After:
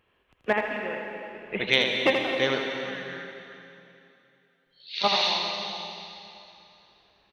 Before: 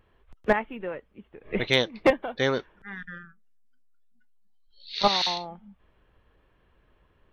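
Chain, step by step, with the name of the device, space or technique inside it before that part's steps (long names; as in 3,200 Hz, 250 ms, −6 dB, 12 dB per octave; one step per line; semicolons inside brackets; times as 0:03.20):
PA in a hall (high-pass filter 190 Hz 6 dB per octave; parametric band 2,700 Hz +8 dB 0.71 octaves; single-tap delay 81 ms −6 dB; convolution reverb RT60 2.8 s, pre-delay 118 ms, DRR 4 dB)
level −3 dB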